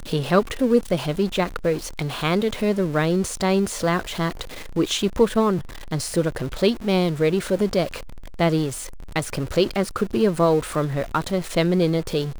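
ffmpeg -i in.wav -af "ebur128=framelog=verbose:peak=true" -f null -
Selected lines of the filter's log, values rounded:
Integrated loudness:
  I:         -22.5 LUFS
  Threshold: -32.7 LUFS
Loudness range:
  LRA:         1.2 LU
  Threshold: -42.9 LUFS
  LRA low:   -23.4 LUFS
  LRA high:  -22.2 LUFS
True peak:
  Peak:       -4.9 dBFS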